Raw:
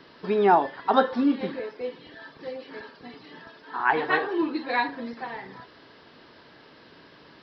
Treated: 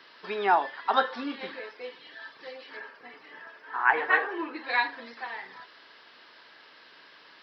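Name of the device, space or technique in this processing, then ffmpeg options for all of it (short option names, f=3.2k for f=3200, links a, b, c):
filter by subtraction: -filter_complex "[0:a]asettb=1/sr,asplit=3[a][b][c];[a]atrim=end=2.774[d];[b]atrim=start=2.77:end=4.64,asetpts=PTS-STARTPTS,afade=t=in:d=0.004:c=qsin,afade=t=out:st=1.866:d=0.004:c=qsin,equalizer=f=500:t=o:w=1:g=4,equalizer=f=2k:t=o:w=1:g=3,equalizer=f=4k:t=o:w=1:g=-11[e];[c]atrim=start=4.636[f];[d][e]acrossfade=d=0.004:c1=hsin:c2=qsin[g];[g][f]acrossfade=d=0.004:c1=qsin:c2=hsin,asplit=2[h][i];[i]lowpass=1.8k,volume=-1[j];[h][j]amix=inputs=2:normalize=0"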